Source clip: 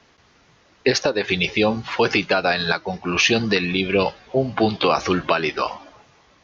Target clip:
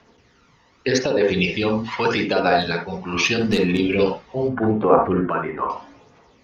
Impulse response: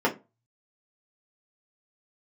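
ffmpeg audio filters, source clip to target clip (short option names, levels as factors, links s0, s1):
-filter_complex "[0:a]asplit=3[s0][s1][s2];[s0]afade=t=out:st=3.38:d=0.02[s3];[s1]aeval=exprs='clip(val(0),-1,0.141)':c=same,afade=t=in:st=3.38:d=0.02,afade=t=out:st=3.78:d=0.02[s4];[s2]afade=t=in:st=3.78:d=0.02[s5];[s3][s4][s5]amix=inputs=3:normalize=0,asettb=1/sr,asplit=3[s6][s7][s8];[s6]atrim=end=4.484[s9];[s7]atrim=start=4.48:end=5.7,asetpts=PTS-STARTPTS,afade=t=in:d=0.004:c=qsin,afade=t=out:st=1.216:d=0.004:c=qsin,lowpass=f=1700:w=0.5412,lowpass=f=1700:w=1.3066[s10];[s8]atrim=start=5.696[s11];[s9][s10]acrossfade=d=0.004:c1=hsin:c2=qsin[s12];[s12][s11]acrossfade=d=0.004:c1=qsin:c2=hsin,aphaser=in_gain=1:out_gain=1:delay=1.1:decay=0.5:speed=0.81:type=triangular,asplit=2[s13][s14];[1:a]atrim=start_sample=2205,atrim=end_sample=3969,adelay=51[s15];[s14][s15]afir=irnorm=-1:irlink=0,volume=0.158[s16];[s13][s16]amix=inputs=2:normalize=0,volume=0.596"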